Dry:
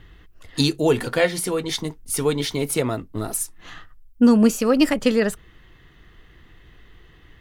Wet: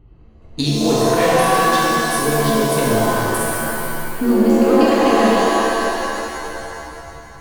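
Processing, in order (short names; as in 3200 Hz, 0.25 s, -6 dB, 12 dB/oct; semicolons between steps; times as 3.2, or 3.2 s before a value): Wiener smoothing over 25 samples; compressor, threshold -15 dBFS, peak gain reduction 5.5 dB; shimmer reverb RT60 2.8 s, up +7 st, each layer -2 dB, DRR -6 dB; gain -2 dB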